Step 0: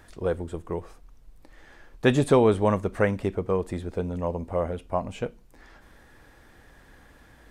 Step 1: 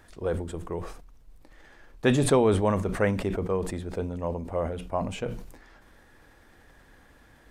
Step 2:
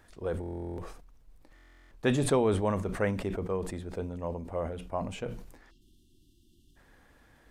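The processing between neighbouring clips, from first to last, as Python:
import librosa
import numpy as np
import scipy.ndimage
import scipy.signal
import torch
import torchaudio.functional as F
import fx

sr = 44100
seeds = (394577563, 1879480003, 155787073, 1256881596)

y1 = fx.hum_notches(x, sr, base_hz=60, count=3)
y1 = fx.sustainer(y1, sr, db_per_s=64.0)
y1 = y1 * librosa.db_to_amplitude(-2.5)
y2 = fx.spec_erase(y1, sr, start_s=5.71, length_s=1.05, low_hz=390.0, high_hz=2700.0)
y2 = fx.buffer_glitch(y2, sr, at_s=(0.41, 1.54), block=1024, repeats=15)
y2 = y2 * librosa.db_to_amplitude(-4.5)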